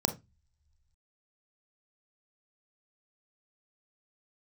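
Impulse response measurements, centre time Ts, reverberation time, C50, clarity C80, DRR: 10 ms, non-exponential decay, 12.5 dB, 21.0 dB, 6.5 dB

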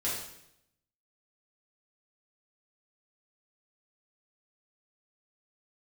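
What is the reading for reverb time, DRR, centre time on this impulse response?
0.75 s, −8.5 dB, 55 ms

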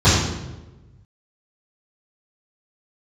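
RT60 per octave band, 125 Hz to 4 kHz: 1.8, 1.3, 1.3, 0.95, 0.85, 0.75 seconds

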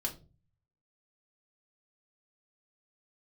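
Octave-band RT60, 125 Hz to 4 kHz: 0.90, 0.55, 0.40, 0.25, 0.20, 0.25 seconds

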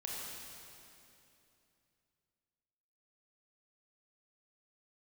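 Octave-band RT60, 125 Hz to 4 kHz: 3.5, 3.3, 3.0, 2.7, 2.6, 2.5 seconds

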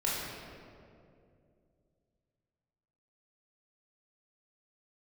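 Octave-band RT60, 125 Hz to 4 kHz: 3.3, 3.0, 2.9, 2.1, 1.7, 1.3 seconds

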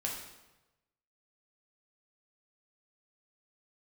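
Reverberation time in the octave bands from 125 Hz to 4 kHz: 1.3, 1.0, 1.1, 1.0, 0.90, 0.85 seconds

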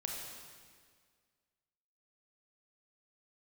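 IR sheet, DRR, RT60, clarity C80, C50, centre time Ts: −1.0 dB, 1.8 s, 2.5 dB, 1.0 dB, 85 ms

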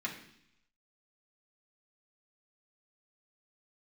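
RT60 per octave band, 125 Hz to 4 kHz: 0.90, 0.85, 0.70, 0.70, 0.85, 0.90 seconds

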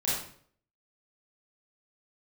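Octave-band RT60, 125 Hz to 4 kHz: 0.70, 0.60, 0.60, 0.50, 0.50, 0.45 seconds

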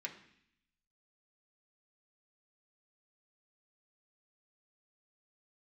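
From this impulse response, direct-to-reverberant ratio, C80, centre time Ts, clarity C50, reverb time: −0.5 dB, 13.5 dB, 15 ms, 10.5 dB, 0.65 s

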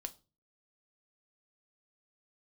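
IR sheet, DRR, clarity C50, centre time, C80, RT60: 8.0 dB, 19.5 dB, 3 ms, 25.5 dB, 0.35 s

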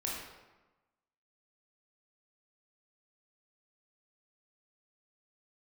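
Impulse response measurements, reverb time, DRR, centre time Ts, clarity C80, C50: 1.1 s, −4.0 dB, 68 ms, 3.5 dB, 0.5 dB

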